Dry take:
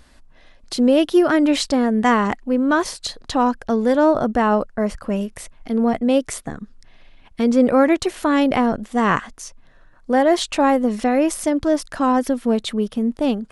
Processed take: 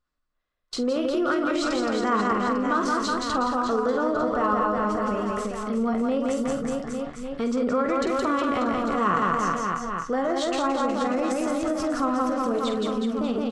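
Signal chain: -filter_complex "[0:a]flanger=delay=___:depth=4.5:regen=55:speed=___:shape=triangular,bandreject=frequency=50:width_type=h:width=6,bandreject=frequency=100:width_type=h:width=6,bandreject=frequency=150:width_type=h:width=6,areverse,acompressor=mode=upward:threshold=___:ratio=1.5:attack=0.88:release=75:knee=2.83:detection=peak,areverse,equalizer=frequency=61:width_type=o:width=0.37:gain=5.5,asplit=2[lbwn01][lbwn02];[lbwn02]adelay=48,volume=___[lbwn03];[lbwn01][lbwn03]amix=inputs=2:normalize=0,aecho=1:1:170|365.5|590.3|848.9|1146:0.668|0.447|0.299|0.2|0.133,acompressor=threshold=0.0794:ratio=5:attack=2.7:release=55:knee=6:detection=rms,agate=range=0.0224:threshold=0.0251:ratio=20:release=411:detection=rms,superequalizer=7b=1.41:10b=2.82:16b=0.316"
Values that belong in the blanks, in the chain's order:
5.4, 1.1, 0.0158, 0.355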